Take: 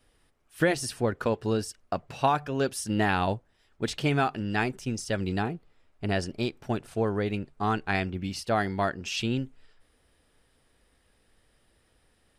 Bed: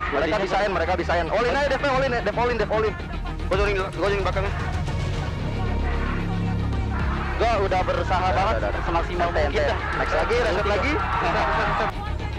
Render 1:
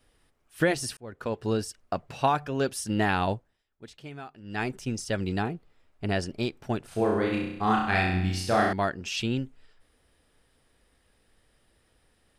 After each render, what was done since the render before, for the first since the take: 0.97–1.50 s: fade in; 3.34–4.72 s: dip -16.5 dB, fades 0.30 s; 6.89–8.73 s: flutter echo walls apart 5.6 m, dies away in 0.82 s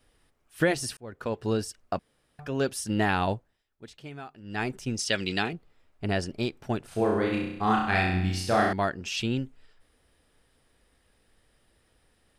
1.99–2.39 s: room tone; 4.99–5.53 s: frequency weighting D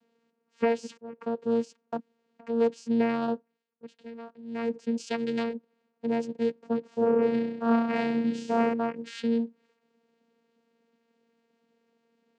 small resonant body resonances 390/3600 Hz, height 8 dB; vocoder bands 8, saw 231 Hz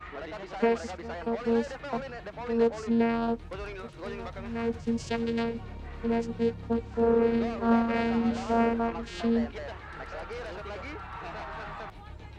add bed -17 dB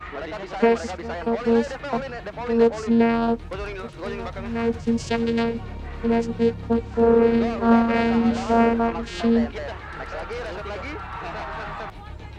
trim +7 dB

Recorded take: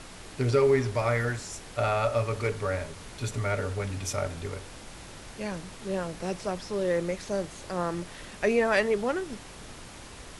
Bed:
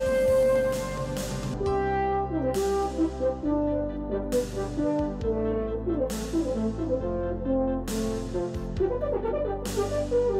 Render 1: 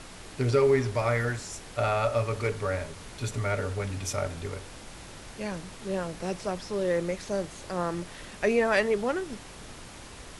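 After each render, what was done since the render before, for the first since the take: no audible change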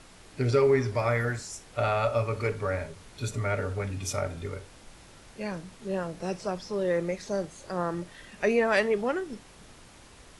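noise print and reduce 7 dB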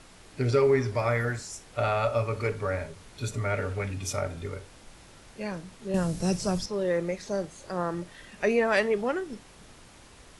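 3.54–3.94 s: peaking EQ 2.3 kHz +5 dB; 5.94–6.66 s: tone controls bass +13 dB, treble +13 dB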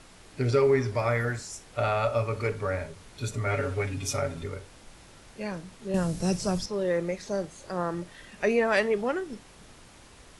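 3.46–4.44 s: comb 7.3 ms, depth 74%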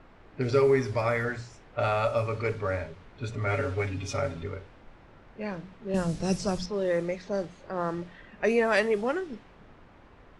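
hum notches 60/120/180 Hz; level-controlled noise filter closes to 1.6 kHz, open at -20.5 dBFS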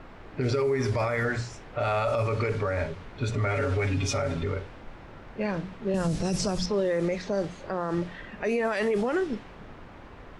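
in parallel at +1.5 dB: compressor with a negative ratio -28 dBFS; on the sum: peak limiter -18.5 dBFS, peak gain reduction 11 dB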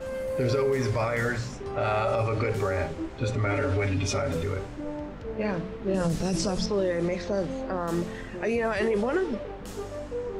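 add bed -9 dB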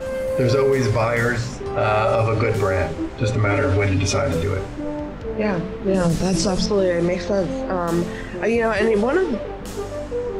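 trim +7.5 dB

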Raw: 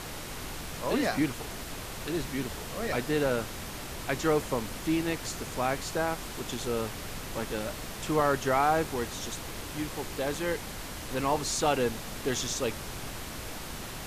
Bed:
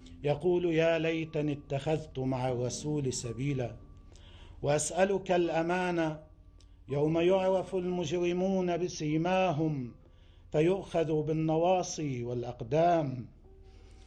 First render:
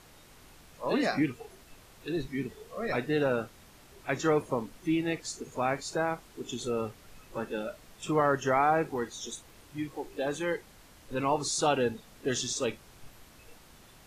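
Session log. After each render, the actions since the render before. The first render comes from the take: noise print and reduce 16 dB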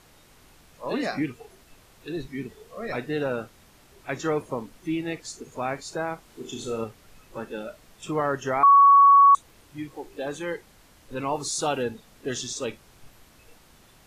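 6.24–6.84 s: flutter echo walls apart 6.1 m, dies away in 0.39 s; 8.63–9.35 s: bleep 1.12 kHz -10.5 dBFS; 11.34–11.83 s: treble shelf 9.7 kHz +8 dB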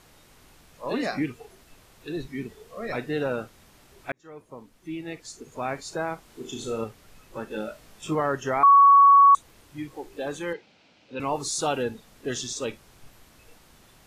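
4.12–5.86 s: fade in linear; 7.49–8.15 s: doubling 19 ms -3 dB; 10.53–11.20 s: cabinet simulation 190–5000 Hz, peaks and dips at 390 Hz -4 dB, 1.1 kHz -9 dB, 1.8 kHz -7 dB, 2.5 kHz +6 dB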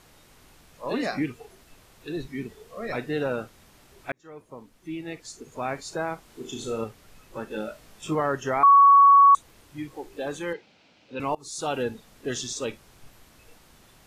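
11.35–11.82 s: fade in, from -23 dB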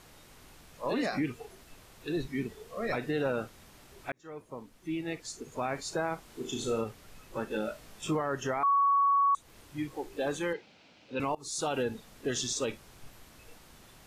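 compression 2.5:1, threshold -25 dBFS, peak gain reduction 8 dB; peak limiter -21.5 dBFS, peak gain reduction 6 dB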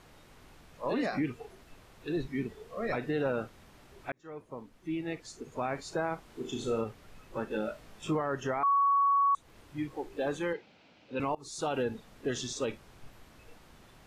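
treble shelf 4.4 kHz -9.5 dB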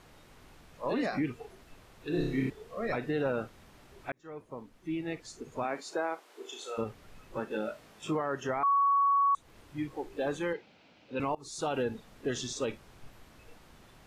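2.09–2.50 s: flutter echo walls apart 5.2 m, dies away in 0.75 s; 5.63–6.77 s: high-pass 180 Hz -> 640 Hz 24 dB/octave; 7.40–8.49 s: high-pass 160 Hz 6 dB/octave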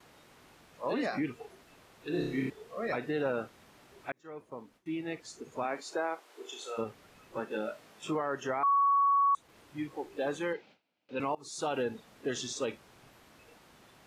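high-pass 200 Hz 6 dB/octave; gate with hold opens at -50 dBFS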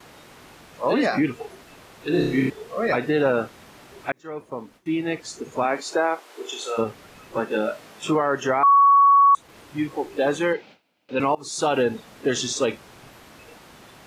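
trim +11.5 dB

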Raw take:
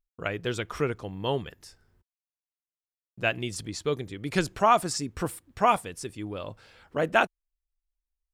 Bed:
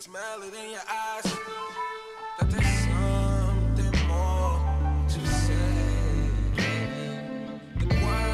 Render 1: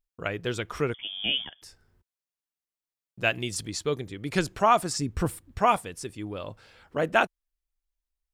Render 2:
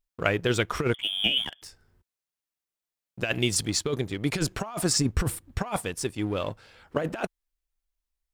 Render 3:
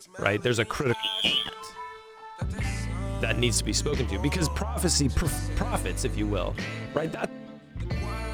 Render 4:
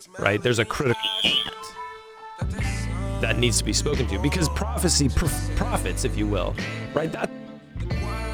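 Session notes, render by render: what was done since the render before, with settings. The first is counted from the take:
0.94–1.62 s: frequency inversion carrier 3.4 kHz; 3.21–3.84 s: treble shelf 2.9 kHz +5 dB; 4.99–5.59 s: bass shelf 160 Hz +11 dB
waveshaping leveller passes 1; compressor with a negative ratio -24 dBFS, ratio -0.5
add bed -7 dB
trim +3.5 dB

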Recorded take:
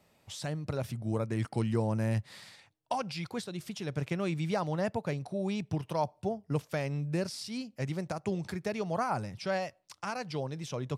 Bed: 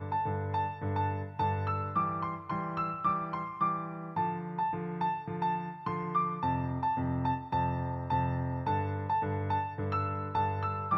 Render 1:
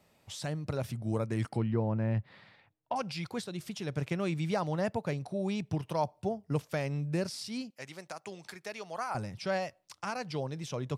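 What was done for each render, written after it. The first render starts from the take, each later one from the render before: 1.57–2.96 s: distance through air 390 m; 7.70–9.15 s: high-pass 1.2 kHz 6 dB/octave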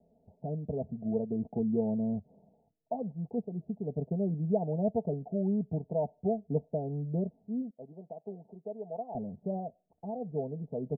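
steep low-pass 770 Hz 72 dB/octave; comb 4.5 ms, depth 75%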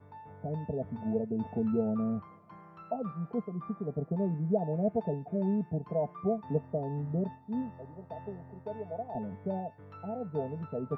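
add bed -17.5 dB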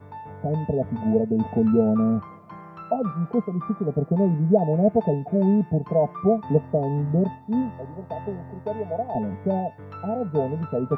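trim +10.5 dB

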